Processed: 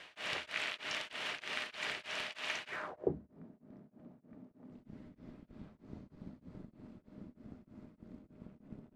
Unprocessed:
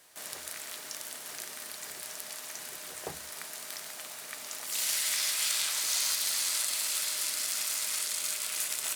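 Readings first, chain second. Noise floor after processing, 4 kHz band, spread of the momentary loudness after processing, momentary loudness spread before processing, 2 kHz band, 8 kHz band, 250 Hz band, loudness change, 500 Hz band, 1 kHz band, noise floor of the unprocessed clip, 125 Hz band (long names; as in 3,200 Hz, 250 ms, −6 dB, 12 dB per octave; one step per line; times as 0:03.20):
−71 dBFS, −11.0 dB, 19 LU, 12 LU, −3.0 dB, −28.0 dB, +9.0 dB, −8.5 dB, +3.5 dB, −3.0 dB, −44 dBFS, can't be measured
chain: reversed playback
upward compression, threshold −43 dBFS
reversed playback
asymmetric clip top −26 dBFS
low-pass filter sweep 2,800 Hz → 230 Hz, 0:02.67–0:03.18
tremolo along a rectified sine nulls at 3.2 Hz
level +5.5 dB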